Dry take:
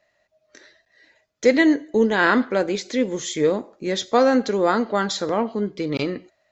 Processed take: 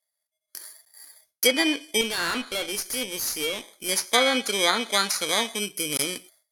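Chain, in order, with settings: bit-reversed sample order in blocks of 16 samples; tilt shelf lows -9.5 dB; low-pass that closes with the level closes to 2.9 kHz, closed at -10.5 dBFS; gate with hold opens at -43 dBFS; treble shelf 4.1 kHz +6.5 dB; 2.01–3.89 s: valve stage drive 19 dB, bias 0.4; trim -2 dB

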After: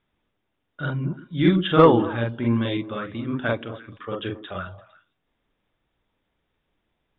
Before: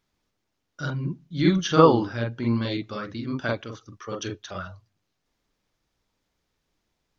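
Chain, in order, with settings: Chebyshev low-pass 3.7 kHz, order 10; saturation -4.5 dBFS, distortion -21 dB; repeats whose band climbs or falls 114 ms, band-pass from 290 Hz, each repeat 1.4 oct, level -11 dB; trim +3 dB

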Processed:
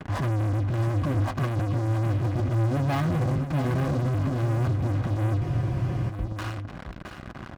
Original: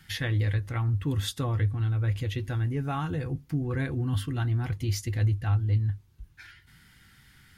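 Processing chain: bit-reversed sample order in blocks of 16 samples; low-pass 1.3 kHz 24 dB/octave; de-hum 257.1 Hz, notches 2; waveshaping leveller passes 5; transient shaper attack -5 dB, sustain +11 dB; compression 6:1, threshold -32 dBFS, peak gain reduction 15 dB; waveshaping leveller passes 3; comb of notches 450 Hz; delay 670 ms -9 dB; spectral freeze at 5.43 s, 0.67 s

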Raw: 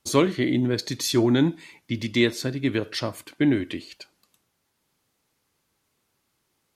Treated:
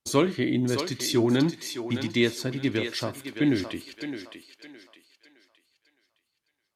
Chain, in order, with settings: gate -48 dBFS, range -12 dB; on a send: thinning echo 614 ms, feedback 37%, high-pass 460 Hz, level -6.5 dB; on the sum: trim -2.5 dB

